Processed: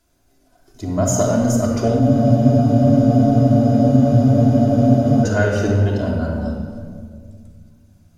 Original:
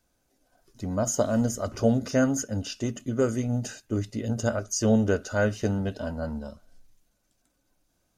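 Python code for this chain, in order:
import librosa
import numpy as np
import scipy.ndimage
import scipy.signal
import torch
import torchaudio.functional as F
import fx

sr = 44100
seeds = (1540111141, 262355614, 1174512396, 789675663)

p1 = 10.0 ** (-27.5 / 20.0) * np.tanh(x / 10.0 ** (-27.5 / 20.0))
p2 = x + F.gain(torch.from_numpy(p1), -10.0).numpy()
p3 = fx.room_shoebox(p2, sr, seeds[0], volume_m3=3300.0, walls='mixed', distance_m=3.1)
p4 = fx.wow_flutter(p3, sr, seeds[1], rate_hz=2.1, depth_cents=27.0)
p5 = fx.spec_freeze(p4, sr, seeds[2], at_s=2.03, hold_s=3.2)
y = F.gain(torch.from_numpy(p5), 2.5).numpy()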